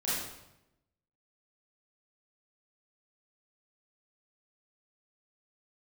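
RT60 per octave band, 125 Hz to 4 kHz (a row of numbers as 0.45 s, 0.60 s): 1.1 s, 1.0 s, 0.90 s, 0.85 s, 0.80 s, 0.70 s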